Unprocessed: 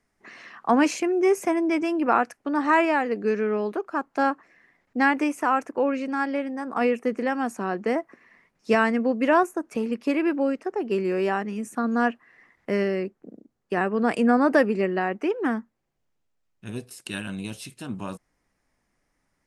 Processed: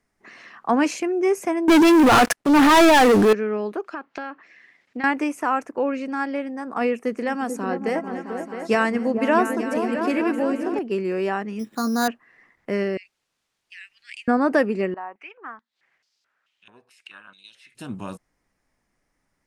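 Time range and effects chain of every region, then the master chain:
1.68–3.33 CVSD 64 kbps + transient shaper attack -11 dB, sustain +4 dB + sample leveller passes 5
3.84–5.04 weighting filter D + compressor 12:1, threshold -26 dBFS + treble ducked by the level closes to 2600 Hz, closed at -31.5 dBFS
7–10.79 high shelf 5200 Hz +6.5 dB + repeats that get brighter 0.221 s, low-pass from 200 Hz, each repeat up 2 oct, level -3 dB
11.59–12.08 doubler 18 ms -9 dB + careless resampling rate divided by 8×, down filtered, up hold
12.97–14.28 steep high-pass 2100 Hz 48 dB/oct + requantised 12-bit, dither triangular + air absorption 64 m
14.94–17.75 upward compressor, threshold -29 dBFS + stepped band-pass 4.6 Hz 960–4800 Hz
whole clip: dry

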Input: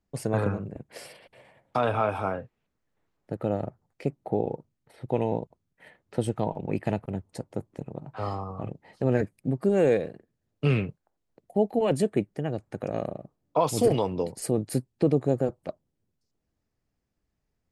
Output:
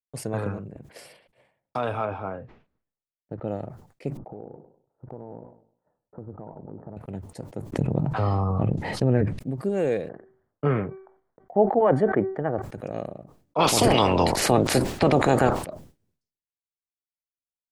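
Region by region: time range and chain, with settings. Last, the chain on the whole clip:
2.05–3.48 LPF 5400 Hz 24 dB/oct + high shelf 2900 Hz -12 dB
4.17–6.97 steep low-pass 1300 Hz 48 dB/oct + compressor 4:1, threshold -34 dBFS + warbling echo 0.1 s, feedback 59%, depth 130 cents, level -14 dB
7.72–9.39 treble ducked by the level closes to 2500 Hz, closed at -23.5 dBFS + low shelf 230 Hz +9.5 dB + fast leveller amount 70%
10.09–12.62 polynomial smoothing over 41 samples + bell 1100 Hz +13 dB 2.7 oct + de-hum 382.7 Hz, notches 6
13.58–15.64 spectral limiter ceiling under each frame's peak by 23 dB + LPF 3100 Hz 6 dB/oct + fast leveller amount 70%
whole clip: expander -47 dBFS; sustainer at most 100 dB/s; gain -3 dB

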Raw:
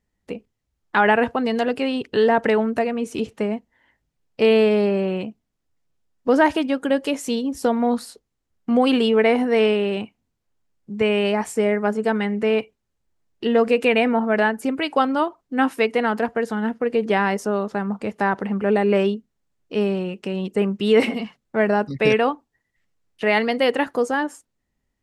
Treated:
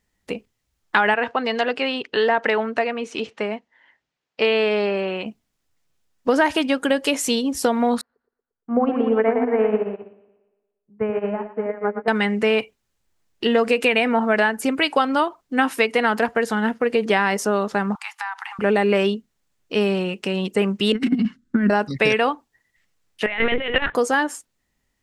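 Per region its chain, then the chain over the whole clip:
1.14–5.26 HPF 480 Hz 6 dB/oct + air absorption 130 m
8.01–12.08 LPF 1500 Hz 24 dB/oct + split-band echo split 310 Hz, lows 83 ms, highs 0.116 s, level -5 dB + upward expander 2.5:1, over -28 dBFS
17.95–18.59 steep high-pass 790 Hz 96 dB/oct + compressor 5:1, threshold -32 dBFS
20.92–21.7 EQ curve 170 Hz 0 dB, 250 Hz +15 dB, 410 Hz -8 dB, 740 Hz -23 dB, 1500 Hz -3 dB, 2300 Hz -15 dB, 3700 Hz -12 dB, 7400 Hz -12 dB, 12000 Hz -19 dB + negative-ratio compressor -18 dBFS, ratio -0.5
23.26–23.95 bell 2200 Hz +7.5 dB 1.7 oct + negative-ratio compressor -22 dBFS, ratio -0.5 + LPC vocoder at 8 kHz pitch kept
whole clip: tilt shelf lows -4 dB, about 940 Hz; compressor, threshold -19 dBFS; gain +5 dB

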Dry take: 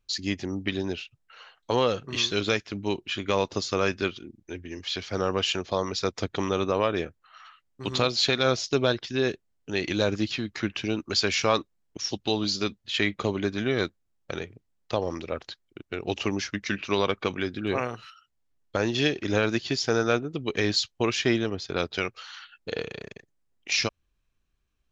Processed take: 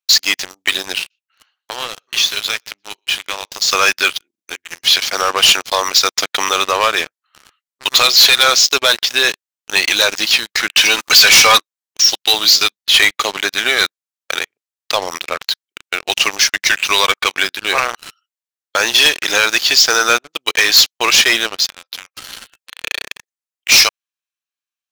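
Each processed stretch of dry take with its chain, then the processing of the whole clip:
0.98–3.68 flange 1.4 Hz, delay 1.2 ms, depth 9.2 ms, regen -48% + compressor 2.5:1, threshold -34 dBFS + echo 0.121 s -20 dB
10.77–11.58 low shelf 290 Hz -8.5 dB + comb 4 ms, depth 45% + power-law curve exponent 0.7
21.68–22.84 comb 3.8 ms, depth 61% + compressor, threshold -43 dBFS + brick-wall FIR high-pass 480 Hz
whole clip: HPF 1000 Hz 12 dB/oct; high shelf 3600 Hz +8.5 dB; sample leveller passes 5

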